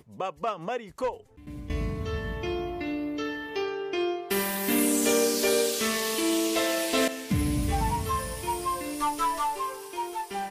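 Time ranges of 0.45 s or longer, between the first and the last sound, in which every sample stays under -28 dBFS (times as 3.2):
1.1–1.7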